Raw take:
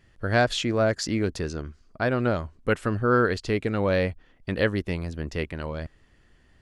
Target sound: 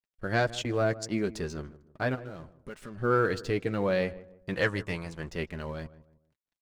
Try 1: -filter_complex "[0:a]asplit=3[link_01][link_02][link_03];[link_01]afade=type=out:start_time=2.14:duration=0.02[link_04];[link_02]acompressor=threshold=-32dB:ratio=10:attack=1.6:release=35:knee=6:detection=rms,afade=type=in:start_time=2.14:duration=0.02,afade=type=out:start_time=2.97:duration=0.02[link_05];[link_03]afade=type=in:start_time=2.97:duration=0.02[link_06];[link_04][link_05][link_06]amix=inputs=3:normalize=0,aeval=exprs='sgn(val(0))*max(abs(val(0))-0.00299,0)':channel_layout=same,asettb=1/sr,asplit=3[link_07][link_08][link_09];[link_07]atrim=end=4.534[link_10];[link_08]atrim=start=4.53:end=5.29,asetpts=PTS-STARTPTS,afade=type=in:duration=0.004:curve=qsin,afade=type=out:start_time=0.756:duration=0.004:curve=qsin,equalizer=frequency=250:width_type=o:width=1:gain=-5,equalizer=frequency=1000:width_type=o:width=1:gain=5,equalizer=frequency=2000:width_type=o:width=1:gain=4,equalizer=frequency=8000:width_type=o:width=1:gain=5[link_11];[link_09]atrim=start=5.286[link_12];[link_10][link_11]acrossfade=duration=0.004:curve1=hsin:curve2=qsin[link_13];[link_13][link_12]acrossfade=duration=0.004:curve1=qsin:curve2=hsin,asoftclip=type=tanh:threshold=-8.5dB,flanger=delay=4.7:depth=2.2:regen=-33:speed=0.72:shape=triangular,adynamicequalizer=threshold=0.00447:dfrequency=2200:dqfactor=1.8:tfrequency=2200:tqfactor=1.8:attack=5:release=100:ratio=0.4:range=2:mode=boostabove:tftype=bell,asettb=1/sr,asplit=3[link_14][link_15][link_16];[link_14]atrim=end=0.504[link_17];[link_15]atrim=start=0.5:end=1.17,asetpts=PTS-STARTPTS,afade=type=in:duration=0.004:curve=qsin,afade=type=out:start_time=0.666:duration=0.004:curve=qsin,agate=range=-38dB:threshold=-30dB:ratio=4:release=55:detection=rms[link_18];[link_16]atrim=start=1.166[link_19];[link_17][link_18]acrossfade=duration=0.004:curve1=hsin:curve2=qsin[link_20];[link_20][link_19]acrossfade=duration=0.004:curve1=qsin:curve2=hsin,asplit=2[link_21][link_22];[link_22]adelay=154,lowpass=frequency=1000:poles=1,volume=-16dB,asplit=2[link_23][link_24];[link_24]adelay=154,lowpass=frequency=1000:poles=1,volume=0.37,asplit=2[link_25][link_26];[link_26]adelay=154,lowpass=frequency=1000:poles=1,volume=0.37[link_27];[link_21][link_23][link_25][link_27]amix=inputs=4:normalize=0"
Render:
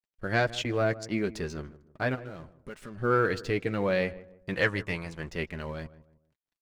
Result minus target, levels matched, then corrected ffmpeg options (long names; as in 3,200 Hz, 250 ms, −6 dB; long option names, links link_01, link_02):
8,000 Hz band −3.0 dB
-filter_complex "[0:a]asplit=3[link_01][link_02][link_03];[link_01]afade=type=out:start_time=2.14:duration=0.02[link_04];[link_02]acompressor=threshold=-32dB:ratio=10:attack=1.6:release=35:knee=6:detection=rms,afade=type=in:start_time=2.14:duration=0.02,afade=type=out:start_time=2.97:duration=0.02[link_05];[link_03]afade=type=in:start_time=2.97:duration=0.02[link_06];[link_04][link_05][link_06]amix=inputs=3:normalize=0,aeval=exprs='sgn(val(0))*max(abs(val(0))-0.00299,0)':channel_layout=same,asettb=1/sr,asplit=3[link_07][link_08][link_09];[link_07]atrim=end=4.534[link_10];[link_08]atrim=start=4.53:end=5.29,asetpts=PTS-STARTPTS,afade=type=in:duration=0.004:curve=qsin,afade=type=out:start_time=0.756:duration=0.004:curve=qsin,equalizer=frequency=250:width_type=o:width=1:gain=-5,equalizer=frequency=1000:width_type=o:width=1:gain=5,equalizer=frequency=2000:width_type=o:width=1:gain=4,equalizer=frequency=8000:width_type=o:width=1:gain=5[link_11];[link_09]atrim=start=5.286[link_12];[link_10][link_11]acrossfade=duration=0.004:curve1=hsin:curve2=qsin[link_13];[link_13][link_12]acrossfade=duration=0.004:curve1=qsin:curve2=hsin,asoftclip=type=tanh:threshold=-8.5dB,flanger=delay=4.7:depth=2.2:regen=-33:speed=0.72:shape=triangular,adynamicequalizer=threshold=0.00447:dfrequency=8000:dqfactor=1.8:tfrequency=8000:tqfactor=1.8:attack=5:release=100:ratio=0.4:range=2:mode=boostabove:tftype=bell,asettb=1/sr,asplit=3[link_14][link_15][link_16];[link_14]atrim=end=0.504[link_17];[link_15]atrim=start=0.5:end=1.17,asetpts=PTS-STARTPTS,afade=type=in:duration=0.004:curve=qsin,afade=type=out:start_time=0.666:duration=0.004:curve=qsin,agate=range=-38dB:threshold=-30dB:ratio=4:release=55:detection=rms[link_18];[link_16]atrim=start=1.166[link_19];[link_17][link_18]acrossfade=duration=0.004:curve1=hsin:curve2=qsin[link_20];[link_20][link_19]acrossfade=duration=0.004:curve1=qsin:curve2=hsin,asplit=2[link_21][link_22];[link_22]adelay=154,lowpass=frequency=1000:poles=1,volume=-16dB,asplit=2[link_23][link_24];[link_24]adelay=154,lowpass=frequency=1000:poles=1,volume=0.37,asplit=2[link_25][link_26];[link_26]adelay=154,lowpass=frequency=1000:poles=1,volume=0.37[link_27];[link_21][link_23][link_25][link_27]amix=inputs=4:normalize=0"